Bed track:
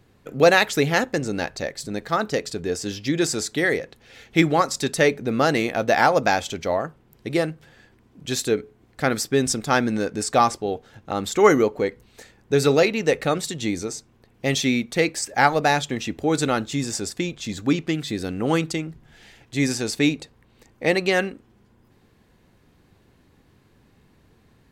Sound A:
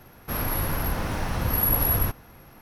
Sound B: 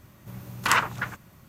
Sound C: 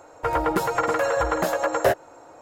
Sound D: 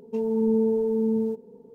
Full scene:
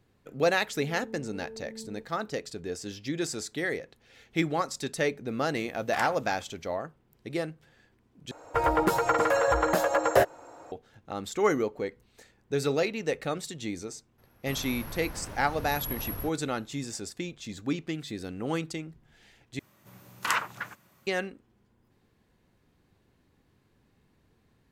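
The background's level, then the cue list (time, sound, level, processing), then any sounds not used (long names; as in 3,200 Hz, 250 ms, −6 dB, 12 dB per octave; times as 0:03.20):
bed track −9.5 dB
0:00.67: mix in D −13 dB + brickwall limiter −25.5 dBFS
0:05.28: mix in B −14.5 dB
0:08.31: overwrite with C −1.5 dB
0:14.18: mix in A −13.5 dB
0:19.59: overwrite with B −5.5 dB + high-pass filter 330 Hz 6 dB per octave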